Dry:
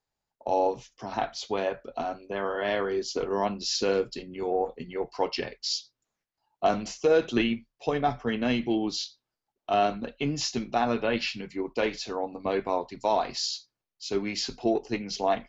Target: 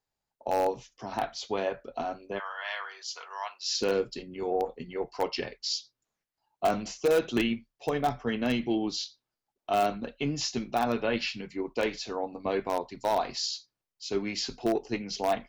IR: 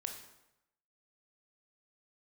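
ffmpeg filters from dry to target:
-filter_complex "[0:a]asplit=3[link_01][link_02][link_03];[link_01]afade=type=out:start_time=2.38:duration=0.02[link_04];[link_02]highpass=frequency=930:width=0.5412,highpass=frequency=930:width=1.3066,afade=type=in:start_time=2.38:duration=0.02,afade=type=out:start_time=3.73:duration=0.02[link_05];[link_03]afade=type=in:start_time=3.73:duration=0.02[link_06];[link_04][link_05][link_06]amix=inputs=3:normalize=0,asplit=2[link_07][link_08];[link_08]aeval=exprs='(mod(5.62*val(0)+1,2)-1)/5.62':channel_layout=same,volume=-12dB[link_09];[link_07][link_09]amix=inputs=2:normalize=0,volume=-3.5dB"

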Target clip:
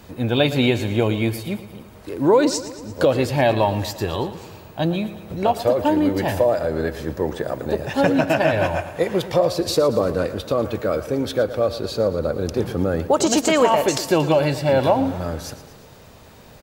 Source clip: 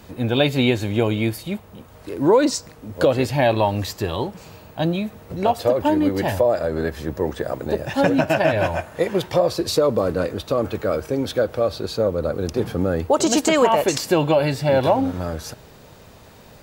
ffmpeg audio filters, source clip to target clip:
ffmpeg -i in.wav -af "aecho=1:1:115|230|345|460|575|690:0.188|0.111|0.0656|0.0387|0.0228|0.0135" out.wav

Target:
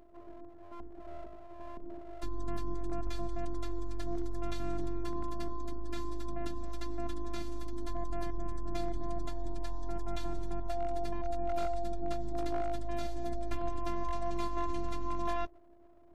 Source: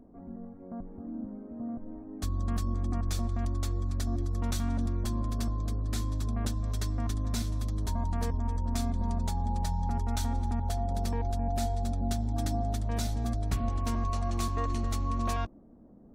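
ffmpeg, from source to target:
ffmpeg -i in.wav -filter_complex "[0:a]afftfilt=real='hypot(re,im)*cos(PI*b)':imag='0':win_size=512:overlap=0.75,aeval=exprs='abs(val(0))':channel_layout=same,acrossover=split=3800[link_01][link_02];[link_02]acompressor=threshold=-56dB:ratio=4:attack=1:release=60[link_03];[link_01][link_03]amix=inputs=2:normalize=0,volume=1.5dB" out.wav

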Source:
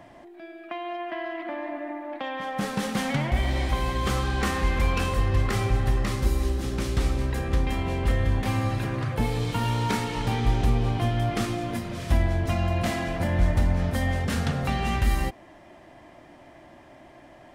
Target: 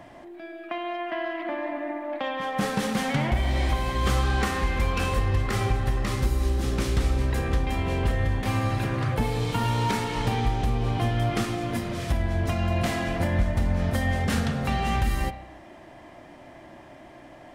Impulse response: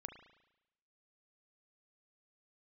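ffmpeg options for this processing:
-filter_complex "[0:a]alimiter=limit=-16.5dB:level=0:latency=1:release=427,asplit=2[link_01][link_02];[1:a]atrim=start_sample=2205,asetrate=48510,aresample=44100[link_03];[link_02][link_03]afir=irnorm=-1:irlink=0,volume=8.5dB[link_04];[link_01][link_04]amix=inputs=2:normalize=0,volume=-4.5dB"

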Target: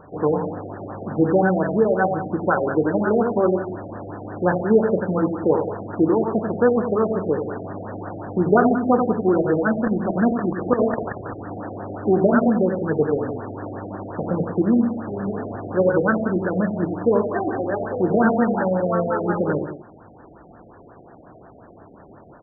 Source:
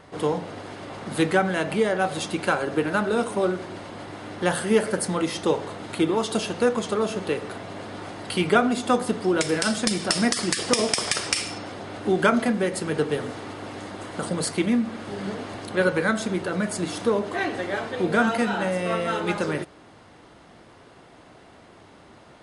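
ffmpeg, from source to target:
ffmpeg -i in.wav -filter_complex "[0:a]asettb=1/sr,asplit=3[link_01][link_02][link_03];[link_01]atrim=end=11.074[link_04];[link_02]atrim=start=11.07:end=11.58,asetpts=PTS-STARTPTS,afade=type=in:duration=0.004:curve=qsin,afade=type=out:start_time=0.506:duration=0.004:curve=qsin,acrossover=split=340|3000[link_05][link_06][link_07];[link_06]acompressor=threshold=-31dB:ratio=6[link_08];[link_05][link_08][link_07]amix=inputs=3:normalize=0[link_09];[link_03]atrim=start=11.576[link_10];[link_04][link_09]acrossfade=duration=0.004:curve1=hsin:curve2=qsin[link_11];[link_11][link_10]acrossfade=duration=0.004:curve1=qsin:curve2=hsin,asplit=2[link_12][link_13];[link_13]aecho=0:1:91|181:0.422|0.237[link_14];[link_12][link_14]amix=inputs=2:normalize=0,afftfilt=real='re*lt(b*sr/1024,750*pow(1900/750,0.5+0.5*sin(2*PI*5.6*pts/sr)))':imag='im*lt(b*sr/1024,750*pow(1900/750,0.5+0.5*sin(2*PI*5.6*pts/sr)))':win_size=1024:overlap=0.75,volume=4dB" out.wav

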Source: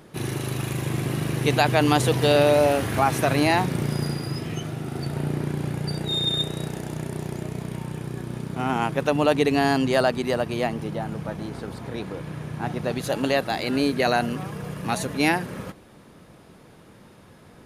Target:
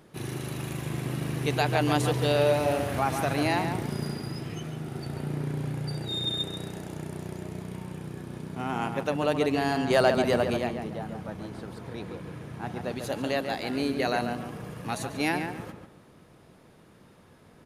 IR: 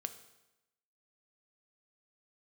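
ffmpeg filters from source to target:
-filter_complex "[0:a]asettb=1/sr,asplit=3[link_01][link_02][link_03];[link_01]atrim=end=9.904[link_04];[link_02]atrim=start=9.9:end=10.57,asetpts=PTS-STARTPTS,afade=type=in:duration=0.004:curve=qsin,afade=type=out:start_time=0.666:duration=0.004:curve=qsin,acontrast=47[link_05];[link_03]atrim=start=10.566[link_06];[link_04][link_05]acrossfade=duration=0.004:curve1=hsin:curve2=qsin[link_07];[link_07][link_06]acrossfade=duration=0.004:curve1=qsin:curve2=hsin,asplit=2[link_08][link_09];[link_09]adelay=142,lowpass=frequency=2700:poles=1,volume=-6dB,asplit=2[link_10][link_11];[link_11]adelay=142,lowpass=frequency=2700:poles=1,volume=0.32,asplit=2[link_12][link_13];[link_13]adelay=142,lowpass=frequency=2700:poles=1,volume=0.32,asplit=2[link_14][link_15];[link_15]adelay=142,lowpass=frequency=2700:poles=1,volume=0.32[link_16];[link_08][link_10][link_12][link_14][link_16]amix=inputs=5:normalize=0,volume=-6.5dB"

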